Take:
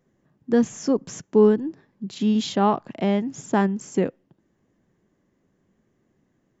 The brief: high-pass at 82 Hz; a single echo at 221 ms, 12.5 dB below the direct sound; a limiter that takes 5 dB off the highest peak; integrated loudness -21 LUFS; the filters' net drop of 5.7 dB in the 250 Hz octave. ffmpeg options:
-af "highpass=82,equalizer=f=250:t=o:g=-7,alimiter=limit=0.178:level=0:latency=1,aecho=1:1:221:0.237,volume=2.11"

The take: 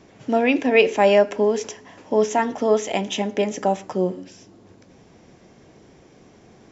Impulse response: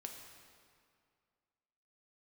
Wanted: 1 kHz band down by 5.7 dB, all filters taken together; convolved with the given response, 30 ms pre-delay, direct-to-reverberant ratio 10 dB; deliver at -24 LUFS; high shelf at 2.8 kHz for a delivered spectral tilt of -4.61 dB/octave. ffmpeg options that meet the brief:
-filter_complex "[0:a]equalizer=f=1000:t=o:g=-7.5,highshelf=f=2800:g=-7.5,asplit=2[s0][s1];[1:a]atrim=start_sample=2205,adelay=30[s2];[s1][s2]afir=irnorm=-1:irlink=0,volume=0.473[s3];[s0][s3]amix=inputs=2:normalize=0,volume=0.841"

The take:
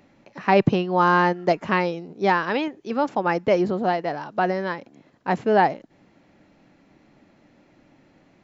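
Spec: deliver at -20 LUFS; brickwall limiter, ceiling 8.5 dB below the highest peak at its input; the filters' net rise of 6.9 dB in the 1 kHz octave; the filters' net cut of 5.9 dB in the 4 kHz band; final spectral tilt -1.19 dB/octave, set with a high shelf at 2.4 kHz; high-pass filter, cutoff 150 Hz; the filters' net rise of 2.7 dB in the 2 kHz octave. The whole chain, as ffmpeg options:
-af "highpass=150,equalizer=f=1000:t=o:g=9,equalizer=f=2000:t=o:g=3,highshelf=f=2400:g=-4,equalizer=f=4000:t=o:g=-7.5,volume=1.26,alimiter=limit=0.422:level=0:latency=1"

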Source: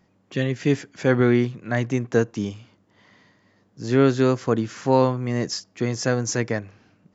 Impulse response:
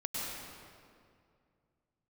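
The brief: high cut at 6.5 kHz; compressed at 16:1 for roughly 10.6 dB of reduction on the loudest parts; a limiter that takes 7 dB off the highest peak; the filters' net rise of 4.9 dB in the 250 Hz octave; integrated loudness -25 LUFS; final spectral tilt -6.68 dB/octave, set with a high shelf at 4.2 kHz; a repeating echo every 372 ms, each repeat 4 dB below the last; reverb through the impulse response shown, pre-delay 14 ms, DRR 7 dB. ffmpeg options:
-filter_complex "[0:a]lowpass=6500,equalizer=f=250:t=o:g=5.5,highshelf=f=4200:g=-6,acompressor=threshold=0.1:ratio=16,alimiter=limit=0.133:level=0:latency=1,aecho=1:1:372|744|1116|1488|1860|2232|2604|2976|3348:0.631|0.398|0.25|0.158|0.0994|0.0626|0.0394|0.0249|0.0157,asplit=2[s0][s1];[1:a]atrim=start_sample=2205,adelay=14[s2];[s1][s2]afir=irnorm=-1:irlink=0,volume=0.282[s3];[s0][s3]amix=inputs=2:normalize=0,volume=1.26"

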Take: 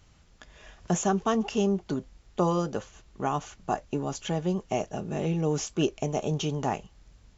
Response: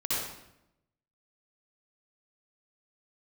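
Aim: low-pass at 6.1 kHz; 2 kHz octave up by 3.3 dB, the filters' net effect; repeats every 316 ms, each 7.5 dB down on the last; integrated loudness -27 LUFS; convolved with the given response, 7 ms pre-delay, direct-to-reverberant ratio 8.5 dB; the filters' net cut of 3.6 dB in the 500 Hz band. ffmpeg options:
-filter_complex "[0:a]lowpass=6100,equalizer=f=500:t=o:g=-5,equalizer=f=2000:t=o:g=5,aecho=1:1:316|632|948|1264|1580:0.422|0.177|0.0744|0.0312|0.0131,asplit=2[s0][s1];[1:a]atrim=start_sample=2205,adelay=7[s2];[s1][s2]afir=irnorm=-1:irlink=0,volume=0.15[s3];[s0][s3]amix=inputs=2:normalize=0,volume=1.41"

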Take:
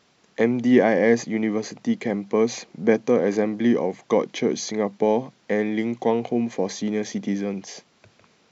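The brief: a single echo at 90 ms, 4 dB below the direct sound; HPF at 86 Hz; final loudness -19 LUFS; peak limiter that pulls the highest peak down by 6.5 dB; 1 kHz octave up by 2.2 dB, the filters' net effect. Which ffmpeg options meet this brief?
-af "highpass=86,equalizer=f=1000:t=o:g=3,alimiter=limit=0.299:level=0:latency=1,aecho=1:1:90:0.631,volume=1.58"

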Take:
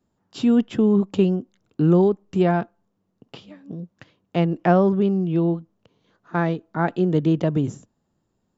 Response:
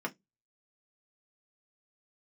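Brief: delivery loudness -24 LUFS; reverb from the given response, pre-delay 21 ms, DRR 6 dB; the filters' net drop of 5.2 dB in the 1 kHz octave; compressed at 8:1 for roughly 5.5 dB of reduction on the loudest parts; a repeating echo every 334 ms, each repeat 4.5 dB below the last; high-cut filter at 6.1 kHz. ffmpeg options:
-filter_complex "[0:a]lowpass=6100,equalizer=f=1000:t=o:g=-8.5,acompressor=threshold=0.112:ratio=8,aecho=1:1:334|668|1002|1336|1670|2004|2338|2672|3006:0.596|0.357|0.214|0.129|0.0772|0.0463|0.0278|0.0167|0.01,asplit=2[s0][s1];[1:a]atrim=start_sample=2205,adelay=21[s2];[s1][s2]afir=irnorm=-1:irlink=0,volume=0.299[s3];[s0][s3]amix=inputs=2:normalize=0"

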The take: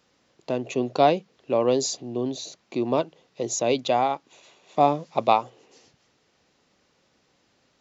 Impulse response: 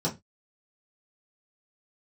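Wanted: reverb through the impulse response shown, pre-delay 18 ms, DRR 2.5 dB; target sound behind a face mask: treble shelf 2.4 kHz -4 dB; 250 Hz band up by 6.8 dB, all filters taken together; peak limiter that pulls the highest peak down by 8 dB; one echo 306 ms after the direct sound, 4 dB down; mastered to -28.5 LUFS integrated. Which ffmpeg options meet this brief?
-filter_complex "[0:a]equalizer=f=250:t=o:g=8,alimiter=limit=0.266:level=0:latency=1,aecho=1:1:306:0.631,asplit=2[s0][s1];[1:a]atrim=start_sample=2205,adelay=18[s2];[s1][s2]afir=irnorm=-1:irlink=0,volume=0.299[s3];[s0][s3]amix=inputs=2:normalize=0,highshelf=f=2400:g=-4,volume=0.316"

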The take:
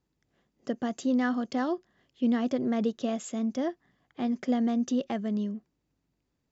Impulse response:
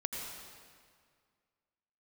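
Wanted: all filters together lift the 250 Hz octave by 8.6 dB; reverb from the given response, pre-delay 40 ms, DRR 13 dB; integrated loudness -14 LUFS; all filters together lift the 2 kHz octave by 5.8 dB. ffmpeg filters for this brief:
-filter_complex "[0:a]equalizer=f=250:t=o:g=9,equalizer=f=2000:t=o:g=7,asplit=2[s0][s1];[1:a]atrim=start_sample=2205,adelay=40[s2];[s1][s2]afir=irnorm=-1:irlink=0,volume=0.168[s3];[s0][s3]amix=inputs=2:normalize=0,volume=2.37"

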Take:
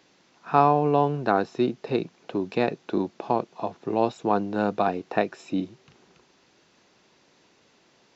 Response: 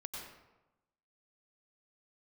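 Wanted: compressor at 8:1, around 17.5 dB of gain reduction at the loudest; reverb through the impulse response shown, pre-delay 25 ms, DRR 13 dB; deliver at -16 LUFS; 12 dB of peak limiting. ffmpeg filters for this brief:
-filter_complex "[0:a]acompressor=threshold=0.0282:ratio=8,alimiter=level_in=1.68:limit=0.0631:level=0:latency=1,volume=0.596,asplit=2[s0][s1];[1:a]atrim=start_sample=2205,adelay=25[s2];[s1][s2]afir=irnorm=-1:irlink=0,volume=0.266[s3];[s0][s3]amix=inputs=2:normalize=0,volume=17.8"

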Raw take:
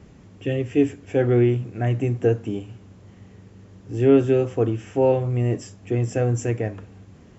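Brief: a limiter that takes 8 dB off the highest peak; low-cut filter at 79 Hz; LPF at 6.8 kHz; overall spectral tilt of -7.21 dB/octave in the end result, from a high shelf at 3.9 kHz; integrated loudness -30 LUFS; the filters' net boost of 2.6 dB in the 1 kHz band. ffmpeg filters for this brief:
-af "highpass=79,lowpass=6800,equalizer=f=1000:t=o:g=3.5,highshelf=f=3900:g=4.5,volume=0.562,alimiter=limit=0.119:level=0:latency=1"

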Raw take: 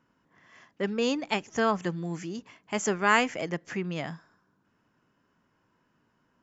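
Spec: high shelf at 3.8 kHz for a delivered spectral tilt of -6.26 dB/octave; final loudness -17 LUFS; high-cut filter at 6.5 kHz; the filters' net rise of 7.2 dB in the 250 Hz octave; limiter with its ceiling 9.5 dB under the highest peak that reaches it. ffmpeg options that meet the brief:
-af "lowpass=6500,equalizer=f=250:t=o:g=9,highshelf=f=3800:g=-9,volume=4.22,alimiter=limit=0.531:level=0:latency=1"

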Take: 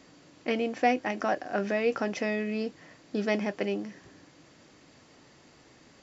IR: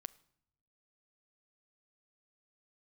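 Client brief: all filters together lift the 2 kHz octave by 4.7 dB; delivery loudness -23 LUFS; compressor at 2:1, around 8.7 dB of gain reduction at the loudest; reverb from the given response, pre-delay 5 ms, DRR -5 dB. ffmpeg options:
-filter_complex "[0:a]equalizer=f=2000:t=o:g=5.5,acompressor=threshold=0.0224:ratio=2,asplit=2[s0][s1];[1:a]atrim=start_sample=2205,adelay=5[s2];[s1][s2]afir=irnorm=-1:irlink=0,volume=3.16[s3];[s0][s3]amix=inputs=2:normalize=0,volume=1.78"

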